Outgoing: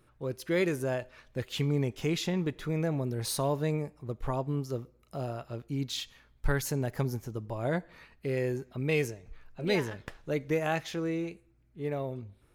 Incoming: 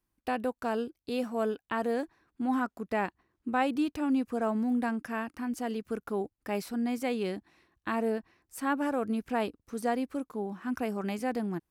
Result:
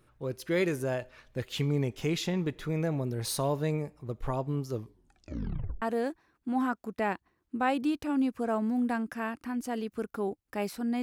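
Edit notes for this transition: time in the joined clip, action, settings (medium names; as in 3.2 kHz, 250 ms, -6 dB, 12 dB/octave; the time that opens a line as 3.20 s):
outgoing
4.71 s: tape stop 1.11 s
5.82 s: go over to incoming from 1.75 s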